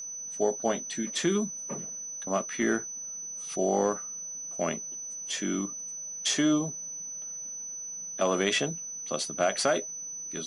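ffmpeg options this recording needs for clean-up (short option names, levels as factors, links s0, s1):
-af "bandreject=f=6000:w=30"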